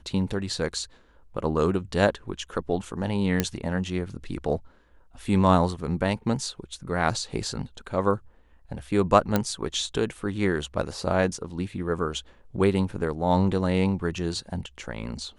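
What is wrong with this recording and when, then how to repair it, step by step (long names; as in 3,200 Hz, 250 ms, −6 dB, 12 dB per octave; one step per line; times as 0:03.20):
0:03.40: click −7 dBFS
0:09.36: click −8 dBFS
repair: click removal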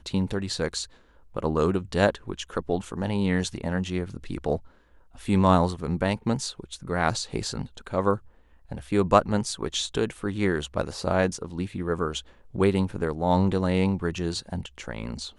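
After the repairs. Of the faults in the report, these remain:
none of them is left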